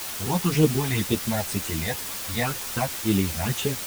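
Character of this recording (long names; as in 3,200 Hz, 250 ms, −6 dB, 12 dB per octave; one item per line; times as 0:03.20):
phaser sweep stages 8, 2 Hz, lowest notch 360–1,700 Hz
a quantiser's noise floor 6 bits, dither triangular
a shimmering, thickened sound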